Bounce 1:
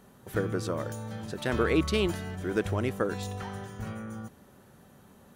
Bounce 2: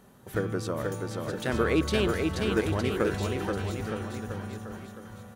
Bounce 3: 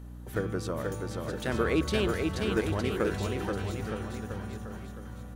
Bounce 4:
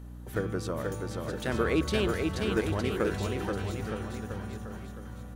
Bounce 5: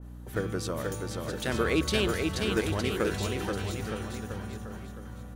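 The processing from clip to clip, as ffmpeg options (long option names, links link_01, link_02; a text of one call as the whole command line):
ffmpeg -i in.wav -af "aecho=1:1:480|912|1301|1651|1966:0.631|0.398|0.251|0.158|0.1" out.wav
ffmpeg -i in.wav -af "aeval=exprs='val(0)+0.01*(sin(2*PI*60*n/s)+sin(2*PI*2*60*n/s)/2+sin(2*PI*3*60*n/s)/3+sin(2*PI*4*60*n/s)/4+sin(2*PI*5*60*n/s)/5)':channel_layout=same,volume=-2dB" out.wav
ffmpeg -i in.wav -af anull out.wav
ffmpeg -i in.wav -af "adynamicequalizer=threshold=0.00501:dfrequency=2200:dqfactor=0.7:tfrequency=2200:tqfactor=0.7:attack=5:release=100:ratio=0.375:range=3:mode=boostabove:tftype=highshelf" out.wav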